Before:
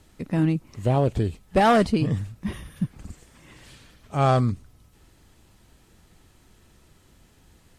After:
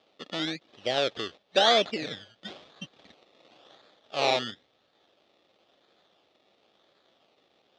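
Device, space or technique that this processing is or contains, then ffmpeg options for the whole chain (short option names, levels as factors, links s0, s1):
circuit-bent sampling toy: -af "acrusher=samples=22:mix=1:aa=0.000001:lfo=1:lforange=13.2:lforate=0.97,highpass=520,equalizer=f=570:t=q:w=4:g=3,equalizer=f=980:t=q:w=4:g=-9,equalizer=f=1500:t=q:w=4:g=-6,equalizer=f=2100:t=q:w=4:g=-3,equalizer=f=3500:t=q:w=4:g=9,lowpass=f=5100:w=0.5412,lowpass=f=5100:w=1.3066,volume=0.891"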